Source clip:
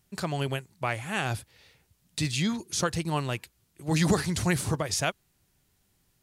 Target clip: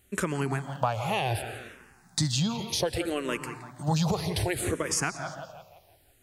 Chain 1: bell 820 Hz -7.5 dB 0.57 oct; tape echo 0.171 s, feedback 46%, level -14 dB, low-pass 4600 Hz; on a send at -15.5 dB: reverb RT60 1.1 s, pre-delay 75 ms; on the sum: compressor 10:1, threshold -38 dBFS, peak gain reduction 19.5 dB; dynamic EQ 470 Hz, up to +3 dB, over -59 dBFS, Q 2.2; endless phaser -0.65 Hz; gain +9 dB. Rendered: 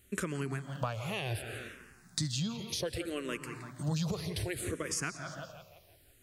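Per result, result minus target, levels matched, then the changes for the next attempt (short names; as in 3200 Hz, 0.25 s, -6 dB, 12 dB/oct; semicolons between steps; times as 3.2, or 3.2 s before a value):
compressor: peak gain reduction +7 dB; 1000 Hz band -4.5 dB
change: compressor 10:1, threshold -30 dBFS, peak gain reduction 12.5 dB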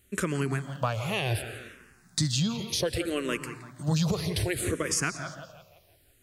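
1000 Hz band -5.0 dB
change: bell 820 Hz +4 dB 0.57 oct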